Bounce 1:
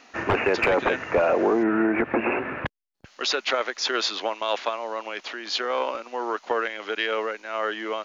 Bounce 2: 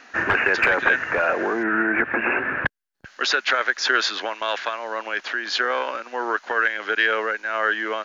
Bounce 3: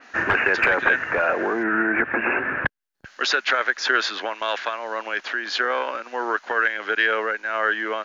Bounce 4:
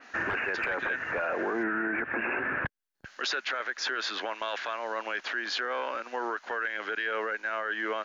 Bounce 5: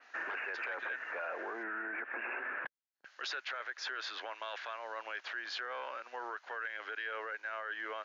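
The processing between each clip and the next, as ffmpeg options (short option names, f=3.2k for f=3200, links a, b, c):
-filter_complex "[0:a]equalizer=f=1.6k:w=3.3:g=12,acrossover=split=1100[a][b];[a]alimiter=limit=-19.5dB:level=0:latency=1:release=301[c];[c][b]amix=inputs=2:normalize=0,volume=1.5dB"
-af "adynamicequalizer=threshold=0.02:dfrequency=3400:dqfactor=0.7:tfrequency=3400:tqfactor=0.7:attack=5:release=100:ratio=0.375:range=2.5:mode=cutabove:tftype=highshelf"
-af "acompressor=threshold=-21dB:ratio=6,alimiter=limit=-18.5dB:level=0:latency=1:release=11,volume=-3.5dB"
-af "highpass=500,lowpass=6.4k,volume=-8dB"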